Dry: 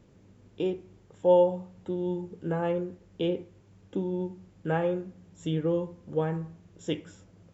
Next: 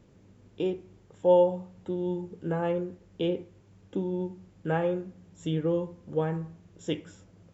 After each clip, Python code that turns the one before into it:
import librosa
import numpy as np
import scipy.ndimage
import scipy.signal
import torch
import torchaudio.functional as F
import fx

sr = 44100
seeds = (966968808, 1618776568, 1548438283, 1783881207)

y = x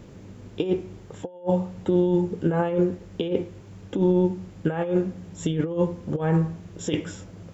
y = fx.over_compress(x, sr, threshold_db=-31.0, ratio=-0.5)
y = y * librosa.db_to_amplitude(9.0)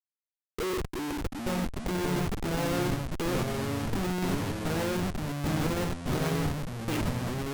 y = fx.filter_sweep_lowpass(x, sr, from_hz=470.0, to_hz=2500.0, start_s=0.75, end_s=1.49, q=5.6)
y = fx.schmitt(y, sr, flips_db=-28.5)
y = fx.echo_pitch(y, sr, ms=197, semitones=-4, count=3, db_per_echo=-3.0)
y = y * librosa.db_to_amplitude(-5.5)